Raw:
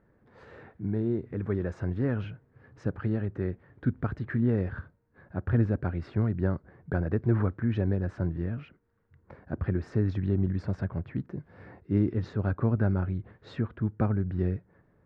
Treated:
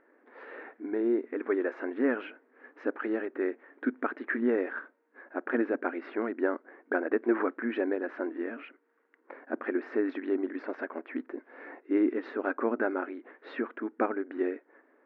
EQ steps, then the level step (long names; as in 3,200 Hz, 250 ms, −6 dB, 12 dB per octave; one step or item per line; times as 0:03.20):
linear-phase brick-wall high-pass 240 Hz
low-pass with resonance 2,200 Hz, resonance Q 1.6
+4.0 dB